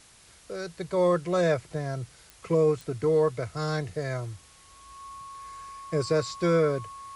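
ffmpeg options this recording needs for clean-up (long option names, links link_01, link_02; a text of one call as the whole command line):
ffmpeg -i in.wav -af "adeclick=threshold=4,bandreject=frequency=1100:width=30,afftdn=noise_reduction=16:noise_floor=-55" out.wav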